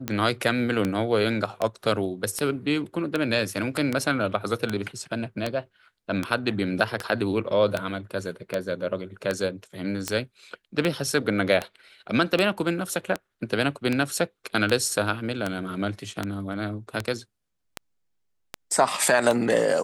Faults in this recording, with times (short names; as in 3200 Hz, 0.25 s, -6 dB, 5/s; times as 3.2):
tick 78 rpm -11 dBFS